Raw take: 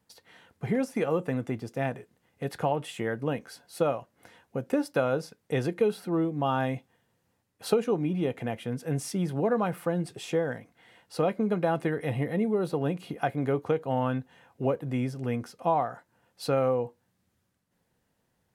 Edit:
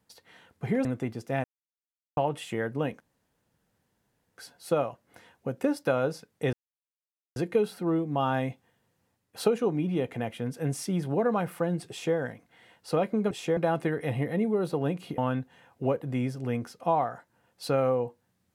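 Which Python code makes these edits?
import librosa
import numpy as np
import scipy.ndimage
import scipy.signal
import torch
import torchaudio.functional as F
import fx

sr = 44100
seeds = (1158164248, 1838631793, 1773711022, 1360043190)

y = fx.edit(x, sr, fx.cut(start_s=0.85, length_s=0.47),
    fx.silence(start_s=1.91, length_s=0.73),
    fx.insert_room_tone(at_s=3.47, length_s=1.38),
    fx.insert_silence(at_s=5.62, length_s=0.83),
    fx.duplicate(start_s=10.16, length_s=0.26, to_s=11.57),
    fx.cut(start_s=13.18, length_s=0.79), tone=tone)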